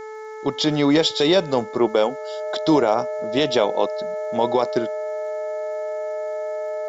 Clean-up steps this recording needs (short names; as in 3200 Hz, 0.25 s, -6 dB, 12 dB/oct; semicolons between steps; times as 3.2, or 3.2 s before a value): de-click; de-hum 434.2 Hz, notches 5; notch 620 Hz, Q 30; noise print and reduce 30 dB